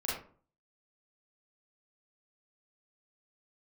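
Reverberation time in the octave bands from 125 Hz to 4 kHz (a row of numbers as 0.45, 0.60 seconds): 0.55, 0.50, 0.45, 0.45, 0.30, 0.25 seconds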